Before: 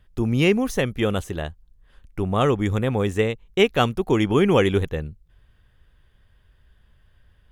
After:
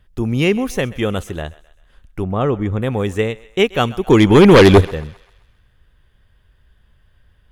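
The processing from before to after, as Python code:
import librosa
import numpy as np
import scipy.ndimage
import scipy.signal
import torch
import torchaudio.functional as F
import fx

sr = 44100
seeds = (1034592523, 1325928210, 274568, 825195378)

y = fx.lowpass(x, sr, hz=1200.0, slope=6, at=(2.24, 2.82))
y = fx.fold_sine(y, sr, drive_db=fx.line((4.06, 3.0), (4.8, 10.0)), ceiling_db=-5.0, at=(4.06, 4.8), fade=0.02)
y = fx.echo_thinned(y, sr, ms=130, feedback_pct=51, hz=570.0, wet_db=-19.0)
y = F.gain(torch.from_numpy(y), 2.5).numpy()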